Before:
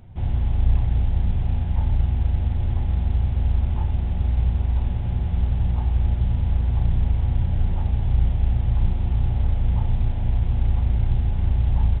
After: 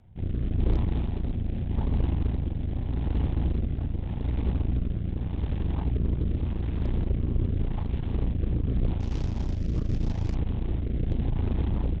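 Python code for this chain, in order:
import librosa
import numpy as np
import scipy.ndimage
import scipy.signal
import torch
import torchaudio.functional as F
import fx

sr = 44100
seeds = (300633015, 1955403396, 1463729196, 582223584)

y = fx.cvsd(x, sr, bps=32000, at=(9.0, 10.35))
y = fx.cheby_harmonics(y, sr, harmonics=(8,), levels_db=(-12,), full_scale_db=-8.5)
y = fx.rotary(y, sr, hz=0.85)
y = y * 10.0 ** (-6.5 / 20.0)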